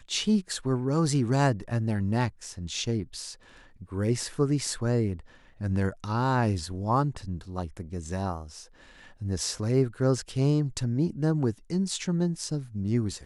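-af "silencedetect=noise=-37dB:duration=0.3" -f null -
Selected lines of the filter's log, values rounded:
silence_start: 3.34
silence_end: 3.81 | silence_duration: 0.48
silence_start: 5.20
silence_end: 5.61 | silence_duration: 0.40
silence_start: 8.62
silence_end: 9.22 | silence_duration: 0.59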